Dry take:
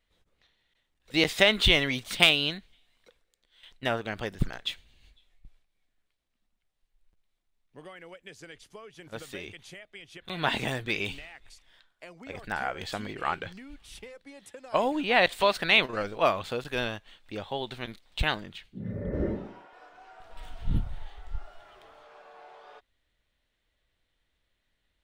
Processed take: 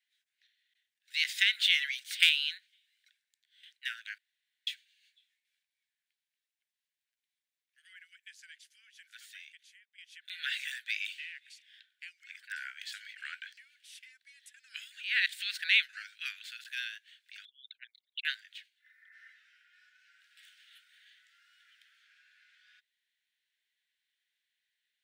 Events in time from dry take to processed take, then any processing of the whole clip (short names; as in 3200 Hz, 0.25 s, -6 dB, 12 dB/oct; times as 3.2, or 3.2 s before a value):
4.18–4.67 room tone
8.97–9.98 fade out, to -14.5 dB
11.19–12.23 bell 2700 Hz +8.5 dB 1.3 oct
17.45–18.25 formant sharpening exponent 3
whole clip: steep high-pass 1500 Hz 96 dB/oct; gain -3.5 dB